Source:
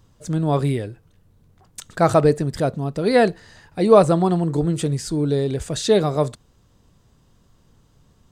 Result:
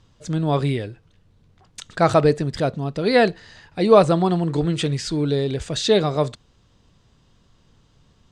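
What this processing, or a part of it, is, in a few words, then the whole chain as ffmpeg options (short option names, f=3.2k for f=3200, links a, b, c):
presence and air boost: -filter_complex "[0:a]lowpass=6k,asettb=1/sr,asplit=3[a][b][c];[a]atrim=end=4.474[d];[b]atrim=start=4.47:end=5.31,asetpts=PTS-STARTPTS,afade=t=in:d=0.004:c=qsin,afade=t=out:st=0.836:d=0.004:c=qsin,equalizer=f=2.3k:t=o:w=2:g=5[e];[c]atrim=start=5.306[f];[d][e]acrossfade=d=0.004:c1=hsin:c2=qsin[g];[g][f]acrossfade=d=0.004:c1=qsin:c2=hsin,equalizer=f=3.2k:t=o:w=1.8:g=5.5,highshelf=f=9.2k:g=5.5,volume=-1dB"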